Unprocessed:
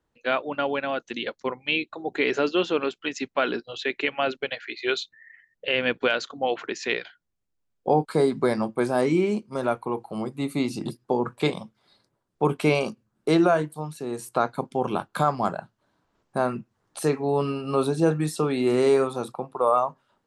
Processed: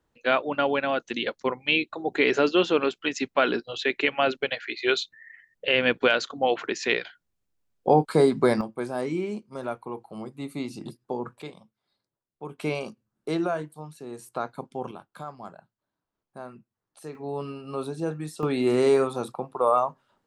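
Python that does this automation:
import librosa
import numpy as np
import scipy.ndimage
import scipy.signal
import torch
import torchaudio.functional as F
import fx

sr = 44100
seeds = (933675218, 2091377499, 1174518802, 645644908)

y = fx.gain(x, sr, db=fx.steps((0.0, 2.0), (8.61, -7.0), (11.42, -16.0), (12.58, -7.5), (14.91, -16.0), (17.15, -8.5), (18.43, -0.5)))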